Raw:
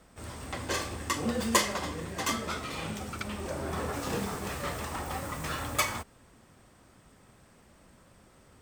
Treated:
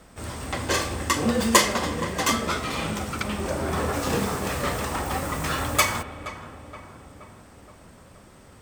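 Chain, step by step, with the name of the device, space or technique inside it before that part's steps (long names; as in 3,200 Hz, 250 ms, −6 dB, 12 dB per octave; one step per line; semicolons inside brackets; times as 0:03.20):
dub delay into a spring reverb (feedback echo with a low-pass in the loop 473 ms, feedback 62%, low-pass 1,800 Hz, level −12.5 dB; spring reverb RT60 3.4 s, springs 34 ms, chirp 80 ms, DRR 17.5 dB)
level +7.5 dB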